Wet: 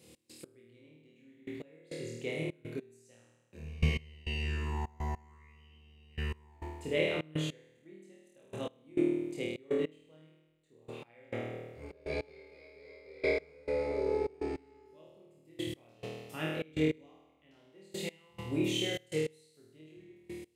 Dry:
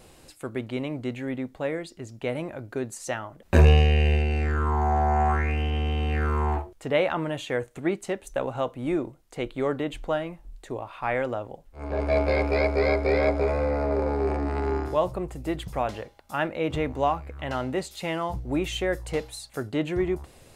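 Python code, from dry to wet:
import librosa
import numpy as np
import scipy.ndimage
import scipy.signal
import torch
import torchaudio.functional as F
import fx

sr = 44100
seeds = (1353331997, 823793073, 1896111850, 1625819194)

y = scipy.signal.sosfilt(scipy.signal.butter(4, 94.0, 'highpass', fs=sr, output='sos'), x)
y = fx.band_shelf(y, sr, hz=1000.0, db=-12.5, octaves=1.7)
y = fx.hum_notches(y, sr, base_hz=60, count=5)
y = fx.room_flutter(y, sr, wall_m=4.4, rt60_s=1.2)
y = fx.step_gate(y, sr, bpm=102, pattern='x.x.......x..xxx', floor_db=-24.0, edge_ms=4.5)
y = y * librosa.db_to_amplitude(-7.5)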